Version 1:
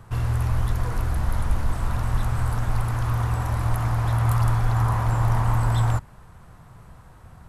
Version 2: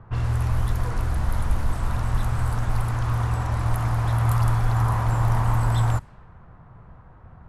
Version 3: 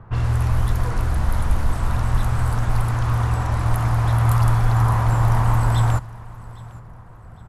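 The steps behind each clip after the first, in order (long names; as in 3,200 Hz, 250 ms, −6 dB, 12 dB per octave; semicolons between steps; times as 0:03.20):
low-pass that shuts in the quiet parts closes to 1,500 Hz, open at −17.5 dBFS
repeating echo 808 ms, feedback 37%, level −21 dB; level +3.5 dB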